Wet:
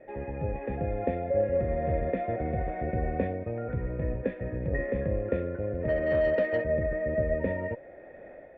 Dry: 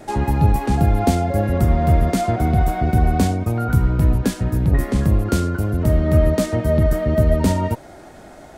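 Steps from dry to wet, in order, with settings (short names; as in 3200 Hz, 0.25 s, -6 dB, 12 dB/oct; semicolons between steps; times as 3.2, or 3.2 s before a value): AGC; vocal tract filter e; 5.88–6.64 overdrive pedal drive 14 dB, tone 2100 Hz, clips at -16 dBFS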